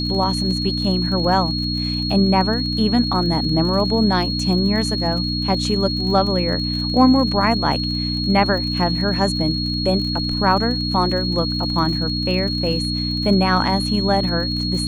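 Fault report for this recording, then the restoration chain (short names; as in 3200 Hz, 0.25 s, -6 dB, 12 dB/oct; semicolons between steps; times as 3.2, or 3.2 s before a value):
crackle 46/s -28 dBFS
hum 60 Hz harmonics 5 -24 dBFS
tone 4300 Hz -24 dBFS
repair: de-click; notch 4300 Hz, Q 30; de-hum 60 Hz, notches 5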